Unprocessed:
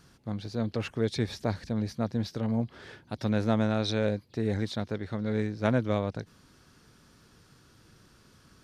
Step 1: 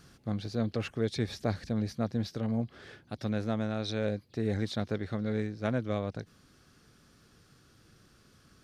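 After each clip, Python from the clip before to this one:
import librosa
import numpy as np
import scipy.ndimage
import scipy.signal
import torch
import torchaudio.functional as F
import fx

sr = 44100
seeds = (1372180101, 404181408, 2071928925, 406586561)

y = fx.rider(x, sr, range_db=4, speed_s=0.5)
y = fx.notch(y, sr, hz=940.0, q=8.1)
y = y * librosa.db_to_amplitude(-2.5)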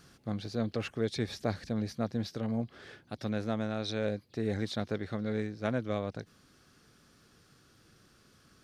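y = fx.low_shelf(x, sr, hz=150.0, db=-5.0)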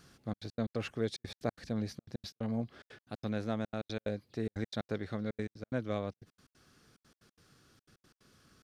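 y = fx.step_gate(x, sr, bpm=181, pattern='xxxx.x.x.x', floor_db=-60.0, edge_ms=4.5)
y = y * librosa.db_to_amplitude(-2.0)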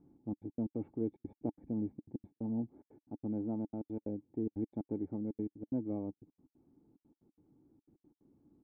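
y = fx.formant_cascade(x, sr, vowel='u')
y = y * librosa.db_to_amplitude(8.0)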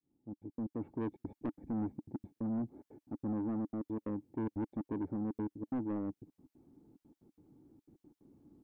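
y = fx.fade_in_head(x, sr, length_s=1.12)
y = 10.0 ** (-36.5 / 20.0) * np.tanh(y / 10.0 ** (-36.5 / 20.0))
y = y * librosa.db_to_amplitude(5.0)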